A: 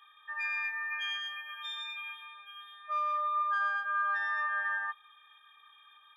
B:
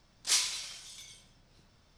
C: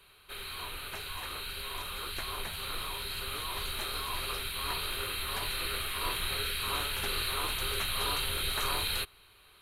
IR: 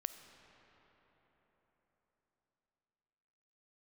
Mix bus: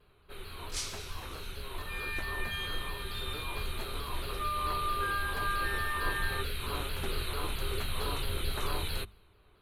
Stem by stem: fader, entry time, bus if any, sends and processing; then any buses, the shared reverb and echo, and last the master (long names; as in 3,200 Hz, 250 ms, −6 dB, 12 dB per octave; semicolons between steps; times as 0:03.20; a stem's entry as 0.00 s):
−15.0 dB, 1.50 s, no send, automatic gain control gain up to 12 dB
−10.0 dB, 0.45 s, no send, no processing
−1.0 dB, 0.00 s, no send, tilt shelving filter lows +6.5 dB, about 720 Hz; pitch modulation by a square or saw wave saw down 4.5 Hz, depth 100 cents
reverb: not used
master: mains-hum notches 50/100/150/200 Hz; one half of a high-frequency compander decoder only